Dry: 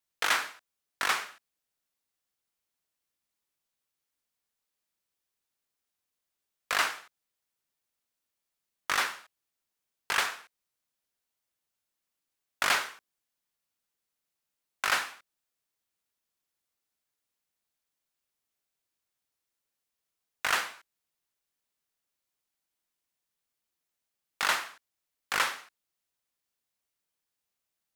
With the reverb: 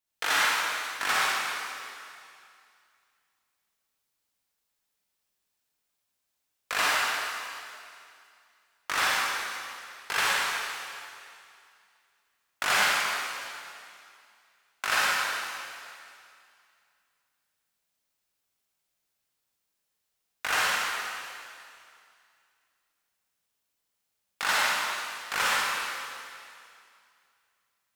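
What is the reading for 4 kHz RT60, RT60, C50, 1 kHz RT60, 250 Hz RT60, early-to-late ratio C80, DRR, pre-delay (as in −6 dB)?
2.4 s, 2.4 s, −5.0 dB, 2.4 s, 2.3 s, −2.5 dB, −7.0 dB, 37 ms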